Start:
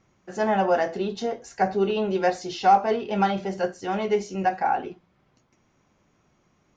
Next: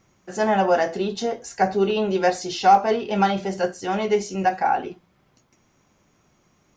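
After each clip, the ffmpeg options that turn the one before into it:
ffmpeg -i in.wav -af "highshelf=frequency=6300:gain=10,volume=2.5dB" out.wav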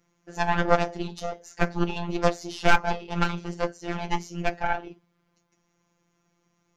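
ffmpeg -i in.wav -af "aeval=exprs='0.562*(cos(1*acos(clip(val(0)/0.562,-1,1)))-cos(1*PI/2))+0.112*(cos(3*acos(clip(val(0)/0.562,-1,1)))-cos(3*PI/2))+0.141*(cos(4*acos(clip(val(0)/0.562,-1,1)))-cos(4*PI/2))+0.0282*(cos(6*acos(clip(val(0)/0.562,-1,1)))-cos(6*PI/2))':channel_layout=same,afftfilt=real='hypot(re,im)*cos(PI*b)':imag='0':win_size=1024:overlap=0.75,volume=2.5dB" out.wav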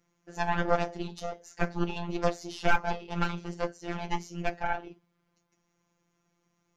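ffmpeg -i in.wav -af "asoftclip=type=tanh:threshold=-3.5dB,volume=-4dB" out.wav

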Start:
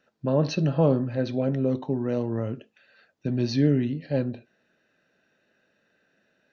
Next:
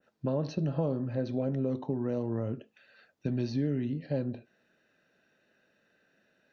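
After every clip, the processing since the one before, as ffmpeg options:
ffmpeg -i in.wav -filter_complex "[0:a]acrossover=split=980|4400[link_01][link_02][link_03];[link_01]acompressor=threshold=-26dB:ratio=4[link_04];[link_02]acompressor=threshold=-49dB:ratio=4[link_05];[link_03]acompressor=threshold=-50dB:ratio=4[link_06];[link_04][link_05][link_06]amix=inputs=3:normalize=0,adynamicequalizer=threshold=0.00282:dfrequency=1700:dqfactor=0.7:tfrequency=1700:tqfactor=0.7:attack=5:release=100:ratio=0.375:range=2.5:mode=cutabove:tftype=highshelf,volume=-1.5dB" out.wav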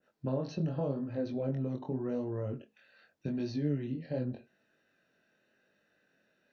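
ffmpeg -i in.wav -af "flanger=delay=19.5:depth=4.9:speed=0.85" out.wav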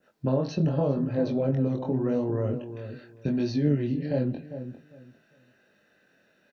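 ffmpeg -i in.wav -filter_complex "[0:a]asplit=2[link_01][link_02];[link_02]adelay=401,lowpass=frequency=1200:poles=1,volume=-10dB,asplit=2[link_03][link_04];[link_04]adelay=401,lowpass=frequency=1200:poles=1,volume=0.22,asplit=2[link_05][link_06];[link_06]adelay=401,lowpass=frequency=1200:poles=1,volume=0.22[link_07];[link_01][link_03][link_05][link_07]amix=inputs=4:normalize=0,volume=8dB" out.wav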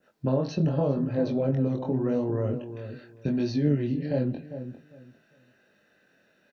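ffmpeg -i in.wav -af anull out.wav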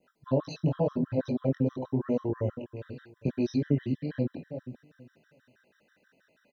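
ffmpeg -i in.wav -af "afftfilt=real='re*gt(sin(2*PI*6.2*pts/sr)*(1-2*mod(floor(b*sr/1024/1000),2)),0)':imag='im*gt(sin(2*PI*6.2*pts/sr)*(1-2*mod(floor(b*sr/1024/1000),2)),0)':win_size=1024:overlap=0.75" out.wav

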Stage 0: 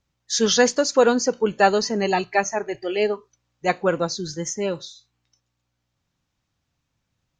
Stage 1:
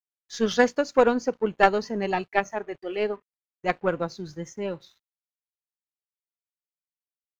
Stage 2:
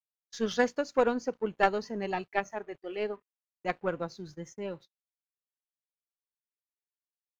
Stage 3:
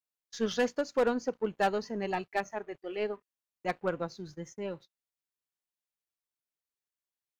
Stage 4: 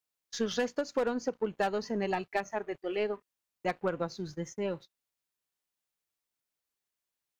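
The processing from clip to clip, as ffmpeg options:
ffmpeg -i in.wav -af "aeval=exprs='sgn(val(0))*max(abs(val(0))-0.00422,0)':channel_layout=same,aeval=exprs='0.668*(cos(1*acos(clip(val(0)/0.668,-1,1)))-cos(1*PI/2))+0.0188*(cos(2*acos(clip(val(0)/0.668,-1,1)))-cos(2*PI/2))+0.15*(cos(3*acos(clip(val(0)/0.668,-1,1)))-cos(3*PI/2))+0.0211*(cos(5*acos(clip(val(0)/0.668,-1,1)))-cos(5*PI/2))+0.00841*(cos(7*acos(clip(val(0)/0.668,-1,1)))-cos(7*PI/2))':channel_layout=same,bass=frequency=250:gain=2,treble=frequency=4000:gain=-13,volume=2dB" out.wav
ffmpeg -i in.wav -af "agate=range=-40dB:threshold=-42dB:ratio=16:detection=peak,volume=-6.5dB" out.wav
ffmpeg -i in.wav -af "volume=20dB,asoftclip=hard,volume=-20dB" out.wav
ffmpeg -i in.wav -af "acompressor=threshold=-32dB:ratio=4,volume=4.5dB" out.wav

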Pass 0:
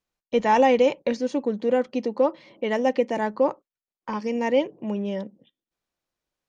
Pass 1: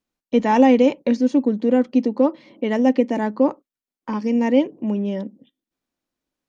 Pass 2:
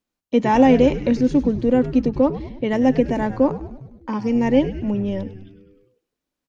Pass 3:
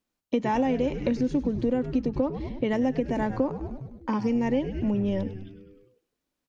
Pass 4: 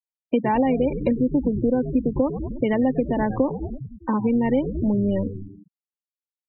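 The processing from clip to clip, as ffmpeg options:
ffmpeg -i in.wav -af "equalizer=frequency=260:width_type=o:width=0.69:gain=11.5" out.wav
ffmpeg -i in.wav -filter_complex "[0:a]asplit=8[link_01][link_02][link_03][link_04][link_05][link_06][link_07][link_08];[link_02]adelay=101,afreqshift=-100,volume=-13dB[link_09];[link_03]adelay=202,afreqshift=-200,volume=-17dB[link_10];[link_04]adelay=303,afreqshift=-300,volume=-21dB[link_11];[link_05]adelay=404,afreqshift=-400,volume=-25dB[link_12];[link_06]adelay=505,afreqshift=-500,volume=-29.1dB[link_13];[link_07]adelay=606,afreqshift=-600,volume=-33.1dB[link_14];[link_08]adelay=707,afreqshift=-700,volume=-37.1dB[link_15];[link_01][link_09][link_10][link_11][link_12][link_13][link_14][link_15]amix=inputs=8:normalize=0" out.wav
ffmpeg -i in.wav -af "acompressor=threshold=-22dB:ratio=6" out.wav
ffmpeg -i in.wav -af "afftfilt=real='re*gte(hypot(re,im),0.0282)':imag='im*gte(hypot(re,im),0.0282)':win_size=1024:overlap=0.75,volume=4.5dB" out.wav

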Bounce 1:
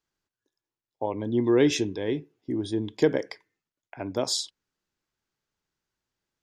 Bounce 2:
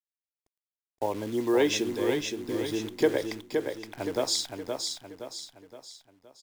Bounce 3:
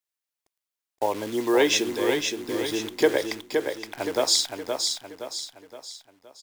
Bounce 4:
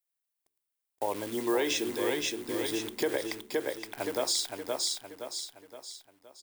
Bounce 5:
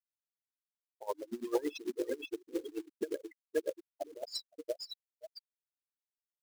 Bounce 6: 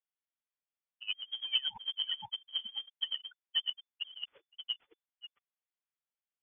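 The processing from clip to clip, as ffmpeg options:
ffmpeg -i in.wav -filter_complex "[0:a]acrossover=split=330|890|2000[link_01][link_02][link_03][link_04];[link_01]acompressor=threshold=-37dB:ratio=12[link_05];[link_05][link_02][link_03][link_04]amix=inputs=4:normalize=0,acrusher=bits=8:dc=4:mix=0:aa=0.000001,aecho=1:1:519|1038|1557|2076|2595:0.562|0.247|0.109|0.0479|0.0211" out.wav
ffmpeg -i in.wav -af "lowshelf=frequency=300:gain=-11.5,volume=7dB" out.wav
ffmpeg -i in.wav -af "bandreject=frequency=72.19:width_type=h:width=4,bandreject=frequency=144.38:width_type=h:width=4,bandreject=frequency=216.57:width_type=h:width=4,bandreject=frequency=288.76:width_type=h:width=4,bandreject=frequency=360.95:width_type=h:width=4,bandreject=frequency=433.14:width_type=h:width=4,alimiter=limit=-14.5dB:level=0:latency=1:release=89,aexciter=amount=2.4:drive=2.5:freq=8500,volume=-4.5dB" out.wav
ffmpeg -i in.wav -af "afftfilt=real='re*gte(hypot(re,im),0.0891)':imag='im*gte(hypot(re,im),0.0891)':win_size=1024:overlap=0.75,acrusher=bits=4:mode=log:mix=0:aa=0.000001,aeval=exprs='val(0)*pow(10,-23*(0.5-0.5*cos(2*PI*8.9*n/s))/20)':channel_layout=same,volume=1dB" out.wav
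ffmpeg -i in.wav -af "lowpass=frequency=3000:width_type=q:width=0.5098,lowpass=frequency=3000:width_type=q:width=0.6013,lowpass=frequency=3000:width_type=q:width=0.9,lowpass=frequency=3000:width_type=q:width=2.563,afreqshift=-3500" out.wav

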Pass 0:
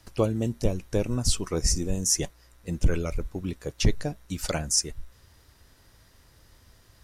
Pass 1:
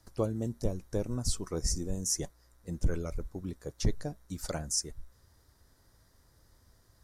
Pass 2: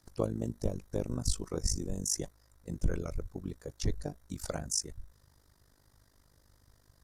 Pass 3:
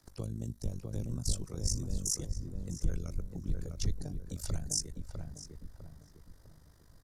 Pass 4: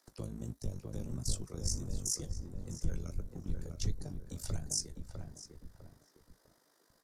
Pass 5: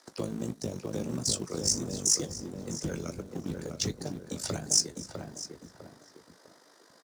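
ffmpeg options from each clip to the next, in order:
ffmpeg -i in.wav -af "equalizer=frequency=2700:width=2:gain=-12,volume=-6.5dB" out.wav
ffmpeg -i in.wav -af "tremolo=f=50:d=0.889,volume=2.5dB" out.wav
ffmpeg -i in.wav -filter_complex "[0:a]asplit=2[link_01][link_02];[link_02]alimiter=limit=-21.5dB:level=0:latency=1,volume=-1dB[link_03];[link_01][link_03]amix=inputs=2:normalize=0,acrossover=split=190|3000[link_04][link_05][link_06];[link_05]acompressor=threshold=-47dB:ratio=2.5[link_07];[link_04][link_07][link_06]amix=inputs=3:normalize=0,asplit=2[link_08][link_09];[link_09]adelay=652,lowpass=frequency=1300:poles=1,volume=-3dB,asplit=2[link_10][link_11];[link_11]adelay=652,lowpass=frequency=1300:poles=1,volume=0.41,asplit=2[link_12][link_13];[link_13]adelay=652,lowpass=frequency=1300:poles=1,volume=0.41,asplit=2[link_14][link_15];[link_15]adelay=652,lowpass=frequency=1300:poles=1,volume=0.41,asplit=2[link_16][link_17];[link_17]adelay=652,lowpass=frequency=1300:poles=1,volume=0.41[link_18];[link_08][link_10][link_12][link_14][link_16][link_18]amix=inputs=6:normalize=0,volume=-5dB" out.wav
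ffmpeg -i in.wav -filter_complex "[0:a]acrossover=split=290[link_01][link_02];[link_01]aeval=exprs='sgn(val(0))*max(abs(val(0))-0.00266,0)':channel_layout=same[link_03];[link_03][link_02]amix=inputs=2:normalize=0,flanger=delay=7.7:depth=6:regen=-59:speed=1.5:shape=sinusoidal,volume=2.5dB" out.wav
ffmpeg -i in.wav -filter_complex "[0:a]highpass=220,lowpass=7700,aecho=1:1:254:0.0841,asplit=2[link_01][link_02];[link_02]acrusher=bits=3:mode=log:mix=0:aa=0.000001,volume=-4.5dB[link_03];[link_01][link_03]amix=inputs=2:normalize=0,volume=8.5dB" out.wav

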